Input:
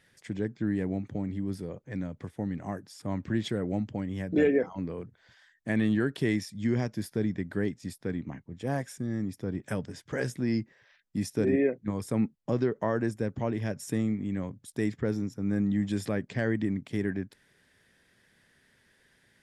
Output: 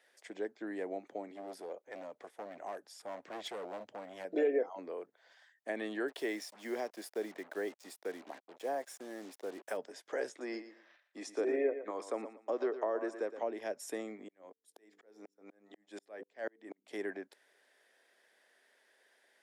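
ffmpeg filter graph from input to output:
ffmpeg -i in.wav -filter_complex "[0:a]asettb=1/sr,asplit=3[link_01][link_02][link_03];[link_01]atrim=end=1.344[link_04];[link_02]atrim=start=1.34:end=4.25,asetpts=PTS-STARTPTS,afade=type=in:duration=0.004:curve=qsin,afade=type=out:start_time=2.906:duration=0.004:curve=qsin,asoftclip=type=hard:threshold=-31dB,asubboost=boost=9:cutoff=110[link_05];[link_03]atrim=start=4.246[link_06];[link_04][link_05]acrossfade=duration=0.004:curve1=hsin:curve2=qsin[link_07];[link_07][link_06]acrossfade=duration=0.004:curve1=qsin:curve2=hsin,asettb=1/sr,asplit=3[link_08][link_09][link_10];[link_08]atrim=end=6.084[link_11];[link_09]atrim=start=6.08:end=9.77,asetpts=PTS-STARTPTS,afade=type=in:duration=0.004:curve=qsin,afade=type=out:start_time=3.686:duration=0.004:curve=qsin,highpass=frequency=150:poles=1,acrusher=bits=7:mix=0:aa=0.5[link_12];[link_10]atrim=start=9.766[link_13];[link_11][link_12]acrossfade=duration=0.004:curve1=hsin:curve2=qsin[link_14];[link_14][link_13]acrossfade=duration=0.004:curve1=qsin:curve2=hsin,asettb=1/sr,asplit=3[link_15][link_16][link_17];[link_15]atrim=end=10.294[link_18];[link_16]atrim=start=10.29:end=13.42,asetpts=PTS-STARTPTS,afade=type=in:duration=0.004:curve=qsin,afade=type=out:start_time=3.126:duration=0.004:curve=qsin,highpass=260,equalizer=frequency=300:width_type=q:width=4:gain=3,equalizer=frequency=1200:width_type=q:width=4:gain=6,equalizer=frequency=5000:width_type=q:width=4:gain=-3,lowpass=frequency=7900:width=0.5412,lowpass=frequency=7900:width=1.3066,aecho=1:1:116|232|348:0.237|0.0545|0.0125,atrim=end_sample=138033[link_19];[link_17]atrim=start=13.416[link_20];[link_18][link_19]acrossfade=duration=0.004:curve1=hsin:curve2=qsin[link_21];[link_21][link_20]acrossfade=duration=0.004:curve1=qsin:curve2=hsin,asettb=1/sr,asplit=3[link_22][link_23][link_24];[link_22]atrim=end=14.284[link_25];[link_23]atrim=start=14.28:end=16.88,asetpts=PTS-STARTPTS,afade=type=in:duration=0.004:curve=qsin,afade=type=out:start_time=2.596:duration=0.004:curve=qsin,bandreject=frequency=50:width_type=h:width=6,bandreject=frequency=100:width_type=h:width=6,bandreject=frequency=150:width_type=h:width=6,bandreject=frequency=200:width_type=h:width=6,bandreject=frequency=250:width_type=h:width=6,bandreject=frequency=300:width_type=h:width=6,bandreject=frequency=350:width_type=h:width=6,bandreject=frequency=400:width_type=h:width=6,bandreject=frequency=450:width_type=h:width=6,bandreject=frequency=500:width_type=h:width=6,aeval=exprs='val(0)*pow(10,-40*if(lt(mod(-4.1*n/s,1),2*abs(-4.1)/1000),1-mod(-4.1*n/s,1)/(2*abs(-4.1)/1000),(mod(-4.1*n/s,1)-2*abs(-4.1)/1000)/(1-2*abs(-4.1)/1000))/20)':channel_layout=same[link_26];[link_24]atrim=start=16.876[link_27];[link_25][link_26]acrossfade=duration=0.004:curve1=hsin:curve2=qsin[link_28];[link_28][link_27]acrossfade=duration=0.004:curve1=qsin:curve2=hsin,highpass=frequency=360:width=0.5412,highpass=frequency=360:width=1.3066,equalizer=frequency=680:width=1.7:gain=8,acrossover=split=470[link_29][link_30];[link_30]acompressor=threshold=-32dB:ratio=6[link_31];[link_29][link_31]amix=inputs=2:normalize=0,volume=-4.5dB" out.wav

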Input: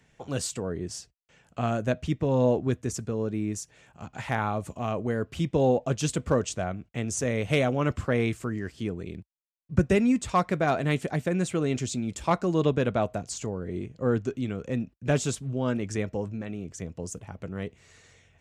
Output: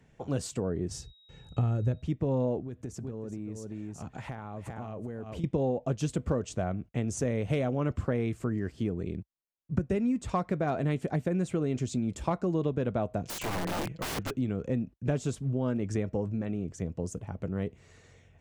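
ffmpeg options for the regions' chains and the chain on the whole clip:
ffmpeg -i in.wav -filter_complex "[0:a]asettb=1/sr,asplit=3[link_01][link_02][link_03];[link_01]atrim=end=0.914[link_04];[link_02]atrim=start=0.91:end=2.02,asetpts=PTS-STARTPTS,afade=type=in:duration=0.004:curve=qsin,afade=type=out:start_time=1.106:duration=0.004:curve=qsin,bass=frequency=250:gain=13,treble=frequency=4000:gain=2,aeval=exprs='val(0)+0.00251*sin(2*PI*3800*n/s)':channel_layout=same,aecho=1:1:2.3:0.48,atrim=end_sample=48951[link_05];[link_03]atrim=start=2.016[link_06];[link_04][link_05]acrossfade=duration=0.004:curve1=hsin:curve2=qsin[link_07];[link_07][link_06]acrossfade=duration=0.004:curve1=qsin:curve2=hsin,asettb=1/sr,asplit=3[link_08][link_09][link_10];[link_08]atrim=end=2.614[link_11];[link_09]atrim=start=2.61:end=5.44,asetpts=PTS-STARTPTS,afade=type=in:duration=0.004:curve=qsin,afade=type=out:start_time=2.826:duration=0.004:curve=qsin,aecho=1:1:383:0.335,atrim=end_sample=124803,acompressor=threshold=-36dB:ratio=12:attack=3.2:release=140:knee=1:detection=peak[link_12];[link_10]atrim=start=5.436[link_13];[link_11][link_12]acrossfade=duration=0.004:curve1=hsin:curve2=qsin[link_14];[link_14][link_13]acrossfade=duration=0.004:curve1=qsin:curve2=hsin,asettb=1/sr,asplit=3[link_15][link_16][link_17];[link_15]atrim=end=13.254[link_18];[link_16]atrim=start=13.25:end=14.31,asetpts=PTS-STARTPTS,afade=type=in:duration=0.004:curve=qsin,afade=type=out:start_time=1.056:duration=0.004:curve=qsin,equalizer=frequency=2400:width=0.85:gain=12.5,aecho=1:1:6.1:0.85,atrim=end_sample=46746,aeval=exprs='(mod(21.1*val(0)+1,2)-1)/21.1':channel_layout=same[link_19];[link_17]atrim=start=14.306[link_20];[link_18][link_19]acrossfade=duration=0.004:curve1=hsin:curve2=qsin[link_21];[link_21][link_20]acrossfade=duration=0.004:curve1=qsin:curve2=hsin,tiltshelf=frequency=1100:gain=5,acompressor=threshold=-24dB:ratio=6,volume=-1.5dB" out.wav

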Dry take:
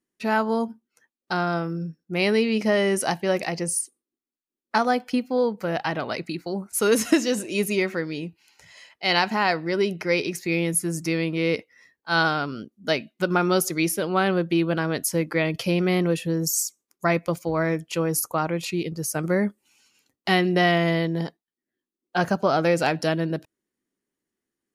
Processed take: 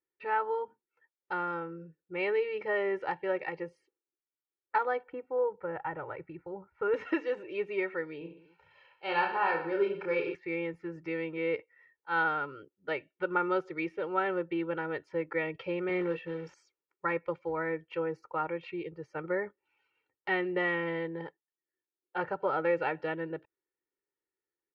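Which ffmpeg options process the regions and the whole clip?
ffmpeg -i in.wav -filter_complex "[0:a]asettb=1/sr,asplit=3[link_01][link_02][link_03];[link_01]atrim=end=5.034[link_04];[link_02]atrim=start=5.03:end=6.94,asetpts=PTS-STARTPTS,afade=type=in:duration=0.004:curve=qsin,afade=type=out:start_time=1.906:duration=0.004:curve=qsin,lowpass=1500,asubboost=boost=8:cutoff=140[link_05];[link_03]atrim=start=6.936[link_06];[link_04][link_05]acrossfade=duration=0.004:curve1=hsin:curve2=qsin[link_07];[link_07][link_06]acrossfade=duration=0.004:curve1=qsin:curve2=hsin,asettb=1/sr,asplit=3[link_08][link_09][link_10];[link_08]atrim=end=8.184[link_11];[link_09]atrim=start=8.18:end=10.35,asetpts=PTS-STARTPTS,afade=type=in:duration=0.004:curve=qsin,afade=type=out:start_time=2.166:duration=0.004:curve=qsin,asuperstop=centerf=2000:order=4:qfactor=4.9,aecho=1:1:30|69|119.7|185.6|271.3:0.631|0.398|0.251|0.158|0.1,atrim=end_sample=95697[link_12];[link_10]atrim=start=10.346[link_13];[link_11][link_12]acrossfade=duration=0.004:curve1=hsin:curve2=qsin[link_14];[link_14][link_13]acrossfade=duration=0.004:curve1=qsin:curve2=hsin,asettb=1/sr,asplit=3[link_15][link_16][link_17];[link_15]atrim=end=15.894[link_18];[link_16]atrim=start=15.89:end=16.54,asetpts=PTS-STARTPTS,afade=type=in:duration=0.004:curve=qsin,afade=type=out:start_time=0.646:duration=0.004:curve=qsin,highpass=130,acrusher=bits=4:mode=log:mix=0:aa=0.000001,asplit=2[link_19][link_20];[link_20]adelay=17,volume=-7dB[link_21];[link_19][link_21]amix=inputs=2:normalize=0,atrim=end_sample=28665[link_22];[link_17]atrim=start=16.536[link_23];[link_18][link_22]acrossfade=duration=0.004:curve1=hsin:curve2=qsin[link_24];[link_24][link_23]acrossfade=duration=0.004:curve1=qsin:curve2=hsin,lowpass=frequency=2400:width=0.5412,lowpass=frequency=2400:width=1.3066,lowshelf=frequency=270:gain=-10.5,aecho=1:1:2.2:0.99,volume=-9dB" out.wav

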